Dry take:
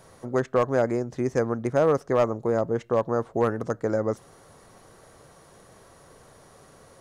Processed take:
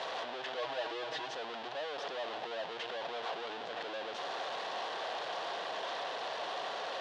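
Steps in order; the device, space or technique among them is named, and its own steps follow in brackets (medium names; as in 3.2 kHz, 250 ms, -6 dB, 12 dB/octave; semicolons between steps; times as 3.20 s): home computer beeper (one-bit comparator; cabinet simulation 700–4000 Hz, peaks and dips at 710 Hz +6 dB, 1.3 kHz -6 dB, 2.2 kHz -7 dB, 3.4 kHz +3 dB); 0.57–1.35 s: comb 6.3 ms, depth 83%; trim -7 dB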